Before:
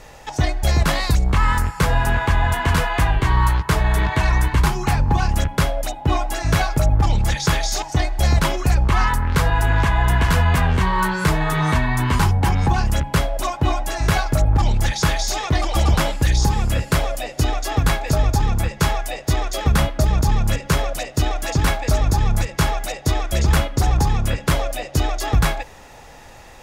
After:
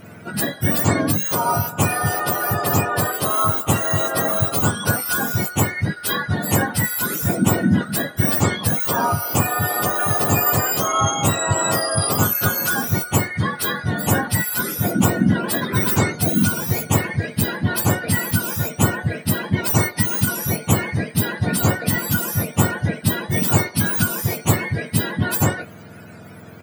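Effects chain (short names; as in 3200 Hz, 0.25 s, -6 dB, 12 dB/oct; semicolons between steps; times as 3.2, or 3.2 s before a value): spectrum mirrored in octaves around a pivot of 1100 Hz; doubler 20 ms -13 dB; gain +2 dB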